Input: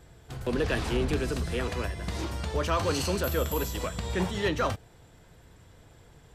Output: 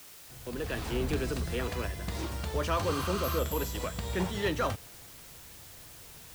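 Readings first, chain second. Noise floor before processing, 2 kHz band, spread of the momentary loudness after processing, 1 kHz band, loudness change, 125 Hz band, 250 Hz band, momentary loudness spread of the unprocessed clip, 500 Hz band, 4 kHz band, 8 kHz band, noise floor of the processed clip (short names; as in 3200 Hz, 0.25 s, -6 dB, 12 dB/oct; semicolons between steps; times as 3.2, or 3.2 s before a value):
-56 dBFS, -3.5 dB, 17 LU, -2.0 dB, -3.0 dB, -3.0 dB, -3.0 dB, 6 LU, -3.0 dB, -3.0 dB, -2.0 dB, -50 dBFS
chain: opening faded in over 1.16 s; requantised 8-bit, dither triangular; spectral repair 2.92–3.36, 1000–9700 Hz before; gain -2.5 dB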